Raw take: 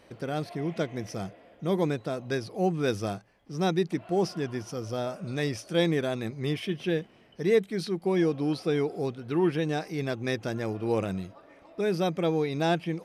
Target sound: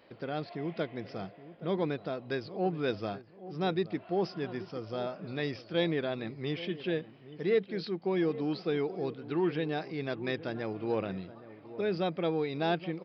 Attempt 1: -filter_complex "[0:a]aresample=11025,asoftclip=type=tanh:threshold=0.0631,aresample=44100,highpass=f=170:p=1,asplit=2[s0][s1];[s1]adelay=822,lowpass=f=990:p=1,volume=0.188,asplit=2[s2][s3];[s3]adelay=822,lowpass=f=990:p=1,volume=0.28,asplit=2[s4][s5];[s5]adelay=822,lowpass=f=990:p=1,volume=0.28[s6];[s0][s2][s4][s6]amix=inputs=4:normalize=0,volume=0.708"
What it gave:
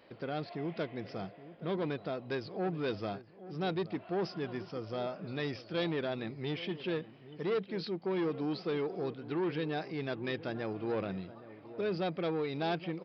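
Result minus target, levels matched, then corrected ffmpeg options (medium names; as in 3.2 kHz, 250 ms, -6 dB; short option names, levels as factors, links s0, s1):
saturation: distortion +17 dB
-filter_complex "[0:a]aresample=11025,asoftclip=type=tanh:threshold=0.251,aresample=44100,highpass=f=170:p=1,asplit=2[s0][s1];[s1]adelay=822,lowpass=f=990:p=1,volume=0.188,asplit=2[s2][s3];[s3]adelay=822,lowpass=f=990:p=1,volume=0.28,asplit=2[s4][s5];[s5]adelay=822,lowpass=f=990:p=1,volume=0.28[s6];[s0][s2][s4][s6]amix=inputs=4:normalize=0,volume=0.708"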